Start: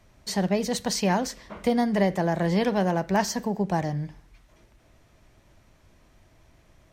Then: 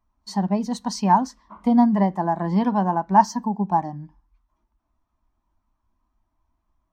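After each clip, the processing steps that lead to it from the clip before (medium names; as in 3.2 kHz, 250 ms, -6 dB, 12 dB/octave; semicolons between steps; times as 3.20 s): ten-band graphic EQ 125 Hz -11 dB, 250 Hz +5 dB, 500 Hz -11 dB, 1 kHz +11 dB, 2 kHz -5 dB; spectral contrast expander 1.5:1; trim +6.5 dB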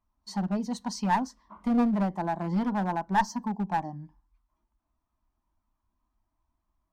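dynamic bell 2.3 kHz, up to -4 dB, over -36 dBFS, Q 0.8; one-sided clip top -18 dBFS; trim -5.5 dB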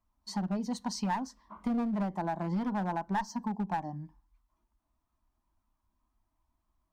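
compression 5:1, threshold -29 dBFS, peak gain reduction 10 dB; wow and flutter 22 cents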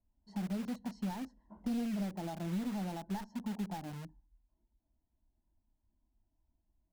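boxcar filter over 37 samples; in parallel at -4 dB: integer overflow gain 40.5 dB; on the sum: trim -3.5 dB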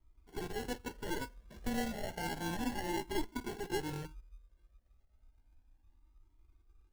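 static phaser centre 1 kHz, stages 8; sample-and-hold 36×; Shepard-style flanger rising 0.32 Hz; trim +14.5 dB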